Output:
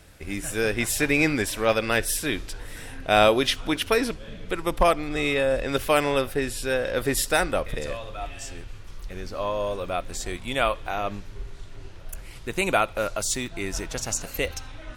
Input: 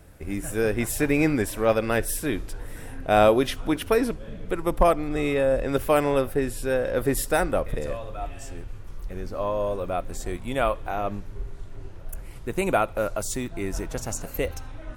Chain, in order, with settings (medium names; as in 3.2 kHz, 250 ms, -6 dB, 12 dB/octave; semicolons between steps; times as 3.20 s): peaking EQ 4 kHz +11.5 dB 2.6 oct; trim -2.5 dB